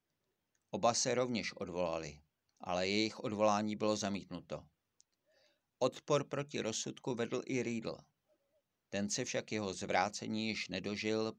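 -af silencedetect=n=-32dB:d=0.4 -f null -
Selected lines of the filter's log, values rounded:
silence_start: 0.00
silence_end: 0.74 | silence_duration: 0.74
silence_start: 2.07
silence_end: 2.69 | silence_duration: 0.62
silence_start: 4.56
silence_end: 5.82 | silence_duration: 1.26
silence_start: 7.91
silence_end: 8.94 | silence_duration: 1.03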